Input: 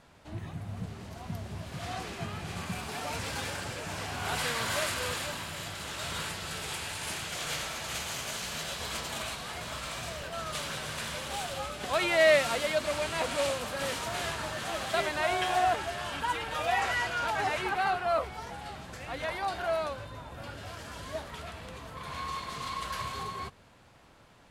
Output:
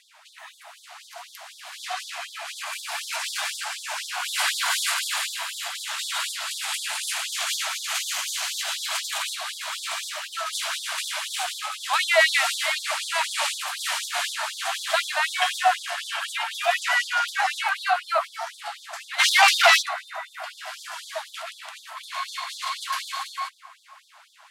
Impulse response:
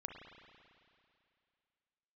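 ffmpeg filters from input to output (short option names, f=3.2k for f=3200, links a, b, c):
-filter_complex "[0:a]asplit=3[a][b][c];[a]afade=t=out:st=19.18:d=0.02[d];[b]aeval=exprs='0.112*sin(PI/2*4.47*val(0)/0.112)':c=same,afade=t=in:st=19.18:d=0.02,afade=t=out:st=19.81:d=0.02[e];[c]afade=t=in:st=19.81:d=0.02[f];[d][e][f]amix=inputs=3:normalize=0,asplit=2[g][h];[1:a]atrim=start_sample=2205,asetrate=24255,aresample=44100[i];[h][i]afir=irnorm=-1:irlink=0,volume=-8.5dB[j];[g][j]amix=inputs=2:normalize=0,afftfilt=real='re*gte(b*sr/1024,590*pow(3400/590,0.5+0.5*sin(2*PI*4*pts/sr)))':imag='im*gte(b*sr/1024,590*pow(3400/590,0.5+0.5*sin(2*PI*4*pts/sr)))':win_size=1024:overlap=0.75,volume=7dB"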